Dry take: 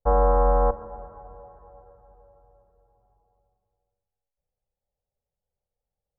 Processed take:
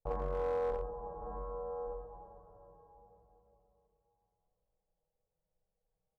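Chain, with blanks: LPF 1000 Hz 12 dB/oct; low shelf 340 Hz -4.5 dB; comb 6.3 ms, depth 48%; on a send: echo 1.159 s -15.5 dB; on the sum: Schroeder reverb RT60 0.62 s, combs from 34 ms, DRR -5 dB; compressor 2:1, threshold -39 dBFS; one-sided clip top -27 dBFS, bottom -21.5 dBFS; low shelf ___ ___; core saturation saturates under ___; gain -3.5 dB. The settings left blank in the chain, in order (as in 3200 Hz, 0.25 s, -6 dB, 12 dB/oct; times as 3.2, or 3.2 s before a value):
120 Hz, +5 dB, 170 Hz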